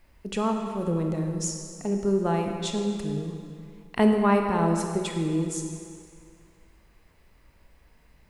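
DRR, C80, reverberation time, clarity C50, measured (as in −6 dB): 3.0 dB, 5.0 dB, 2.3 s, 4.5 dB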